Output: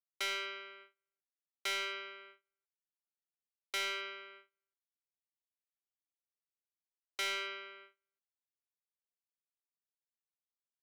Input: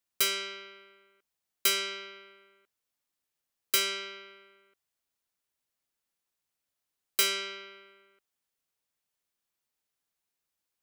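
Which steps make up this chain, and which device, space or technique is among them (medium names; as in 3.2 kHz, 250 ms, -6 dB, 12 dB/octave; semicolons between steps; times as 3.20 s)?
walkie-talkie (band-pass 440–2900 Hz; hard clipper -32.5 dBFS, distortion -9 dB; gate -56 dBFS, range -30 dB)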